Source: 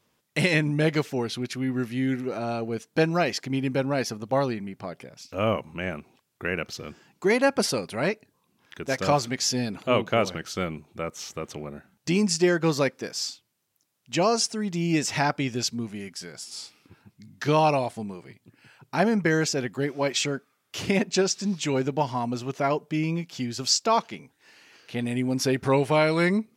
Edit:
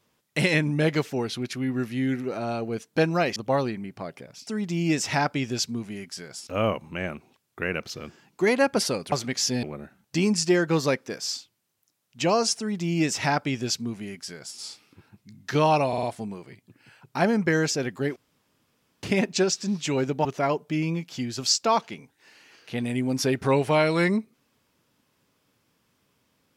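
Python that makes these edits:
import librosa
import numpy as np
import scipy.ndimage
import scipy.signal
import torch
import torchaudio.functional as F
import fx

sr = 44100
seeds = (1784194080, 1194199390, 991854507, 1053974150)

y = fx.edit(x, sr, fx.cut(start_s=3.36, length_s=0.83),
    fx.cut(start_s=7.95, length_s=1.2),
    fx.cut(start_s=9.66, length_s=1.9),
    fx.duplicate(start_s=14.51, length_s=2.0, to_s=5.3),
    fx.stutter(start_s=17.81, slice_s=0.05, count=4),
    fx.room_tone_fill(start_s=19.94, length_s=0.87),
    fx.cut(start_s=22.03, length_s=0.43), tone=tone)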